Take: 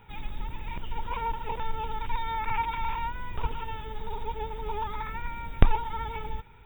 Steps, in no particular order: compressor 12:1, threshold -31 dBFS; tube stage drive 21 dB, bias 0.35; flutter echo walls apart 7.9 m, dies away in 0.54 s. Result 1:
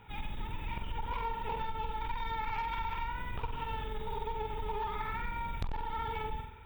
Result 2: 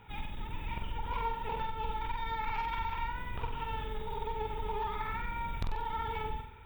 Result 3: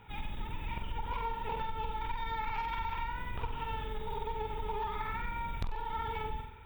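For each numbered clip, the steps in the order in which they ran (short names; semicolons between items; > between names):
flutter echo > tube stage > compressor; tube stage > compressor > flutter echo; tube stage > flutter echo > compressor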